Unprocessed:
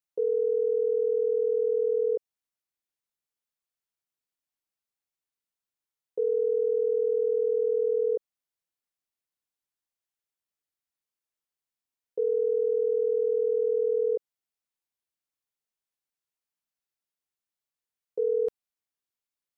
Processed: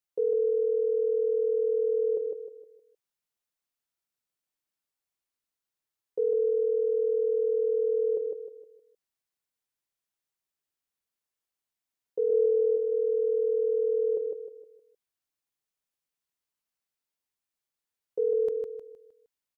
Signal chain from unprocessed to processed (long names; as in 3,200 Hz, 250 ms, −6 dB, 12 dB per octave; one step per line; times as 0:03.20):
0:12.30–0:12.77: spectral tilt −1.5 dB per octave
on a send: repeating echo 155 ms, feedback 38%, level −4.5 dB